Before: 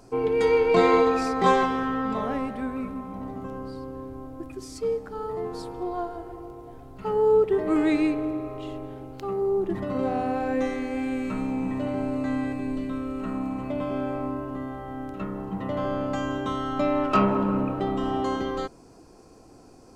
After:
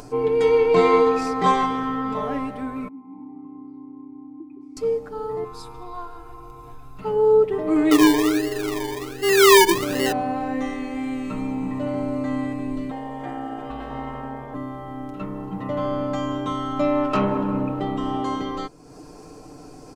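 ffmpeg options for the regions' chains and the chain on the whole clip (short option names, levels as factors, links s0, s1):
-filter_complex "[0:a]asettb=1/sr,asplit=3[s0][s1][s2];[s0]atrim=end=2.884[s3];[s1]atrim=start=2.88:end=4.77,asetpts=PTS-STARTPTS,afade=t=in:d=0.004:c=qsin,afade=t=out:st=1.886:d=0.004:c=qsin,asplit=3[s4][s5][s6];[s4]bandpass=f=300:t=q:w=8,volume=1[s7];[s5]bandpass=f=870:t=q:w=8,volume=0.501[s8];[s6]bandpass=f=2240:t=q:w=8,volume=0.355[s9];[s7][s8][s9]amix=inputs=3:normalize=0,equalizer=f=5300:t=o:w=2.5:g=-14.5[s10];[s2]atrim=start=4.766[s11];[s3][s10]acrossfade=d=0.004:c1=hsin:c2=qsin[s12];[s12][s11]acrossfade=d=0.004:c1=qsin:c2=hsin,asettb=1/sr,asplit=3[s13][s14][s15];[s13]atrim=end=5.444[s16];[s14]atrim=start=5.44:end=6.99,asetpts=PTS-STARTPTS,afade=t=in:d=0.004:c=qsin,afade=t=out:st=1.546:d=0.004:c=qsin,equalizer=f=240:w=0.62:g=-13,aecho=1:1:0.8:0.56,atrim=end_sample=68355[s17];[s15]atrim=start=6.986[s18];[s16][s17]acrossfade=d=0.004:c1=hsin:c2=qsin[s19];[s19][s18]acrossfade=d=0.004:c1=qsin:c2=hsin,asettb=1/sr,asplit=3[s20][s21][s22];[s20]atrim=end=7.914[s23];[s21]atrim=start=7.91:end=10.12,asetpts=PTS-STARTPTS,afade=t=in:d=0.004:c=qsin,afade=t=out:st=2.206:d=0.004:c=qsin,equalizer=f=390:t=o:w=0.56:g=11.5,aecho=1:1:2.4:0.41,atrim=end_sample=97461,acrusher=samples=26:mix=1:aa=0.000001:lfo=1:lforange=15.6:lforate=1.3[s24];[s22]atrim=start=10.116[s25];[s23][s24]acrossfade=d=0.004:c1=hsin:c2=qsin[s26];[s26][s25]acrossfade=d=0.004:c1=qsin:c2=hsin,asettb=1/sr,asplit=3[s27][s28][s29];[s27]atrim=end=12.914[s30];[s28]atrim=start=12.91:end=14.54,asetpts=PTS-STARTPTS,afade=t=in:d=0.004:c=qsin,afade=t=out:st=1.626:d=0.004:c=qsin,aeval=exprs='val(0)+0.01*(sin(2*PI*50*n/s)+sin(2*PI*2*50*n/s)/2+sin(2*PI*3*50*n/s)/3+sin(2*PI*4*50*n/s)/4+sin(2*PI*5*50*n/s)/5)':c=same,aeval=exprs='val(0)*sin(2*PI*530*n/s)':c=same[s31];[s29]atrim=start=14.536[s32];[s30][s31]acrossfade=d=0.004:c1=hsin:c2=qsin[s33];[s33][s32]acrossfade=d=0.004:c1=qsin:c2=hsin,aecho=1:1:6.7:0.58,acompressor=mode=upward:threshold=0.0224:ratio=2.5"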